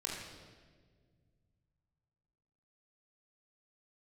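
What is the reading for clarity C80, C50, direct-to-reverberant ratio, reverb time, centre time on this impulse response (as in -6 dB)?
3.0 dB, 1.0 dB, -3.5 dB, 1.7 s, 76 ms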